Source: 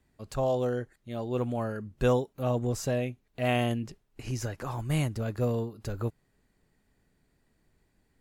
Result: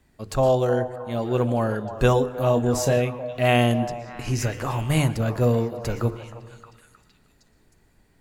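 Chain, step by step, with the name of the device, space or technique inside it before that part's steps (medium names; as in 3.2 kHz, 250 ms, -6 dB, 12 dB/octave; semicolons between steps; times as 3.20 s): hum notches 50/100/150/200/250/300/350/400/450/500 Hz; 2.25–2.97 s: doubling 29 ms -8.5 dB; compressed reverb return (on a send at -6 dB: reverberation RT60 1.0 s, pre-delay 108 ms + compression, threshold -39 dBFS, peak gain reduction 17.5 dB); on the sum: repeats whose band climbs or falls 312 ms, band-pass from 750 Hz, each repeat 0.7 oct, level -8.5 dB; trim +8.5 dB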